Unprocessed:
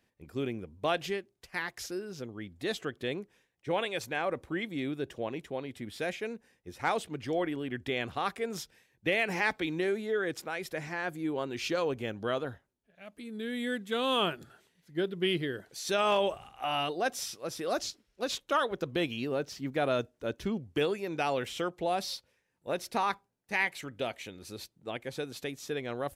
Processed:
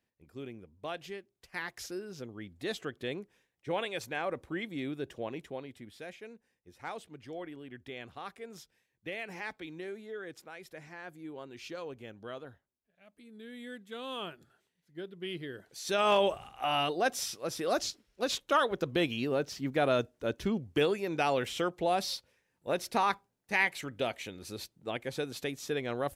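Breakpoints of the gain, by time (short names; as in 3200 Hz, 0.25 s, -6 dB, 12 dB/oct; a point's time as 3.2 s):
1.05 s -9.5 dB
1.66 s -2.5 dB
5.46 s -2.5 dB
6.03 s -11 dB
15.2 s -11 dB
16.13 s +1.5 dB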